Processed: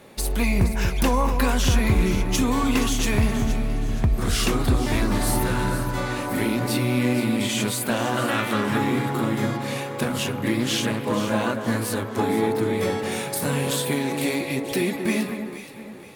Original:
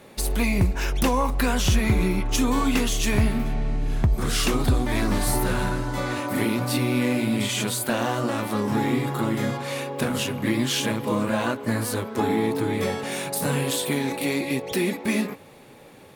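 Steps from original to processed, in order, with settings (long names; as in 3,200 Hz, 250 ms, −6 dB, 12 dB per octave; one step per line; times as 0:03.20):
0:08.17–0:08.78: flat-topped bell 2,200 Hz +9 dB
delay that swaps between a low-pass and a high-pass 236 ms, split 1,900 Hz, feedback 61%, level −7 dB
0:10.60–0:11.13: highs frequency-modulated by the lows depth 0.2 ms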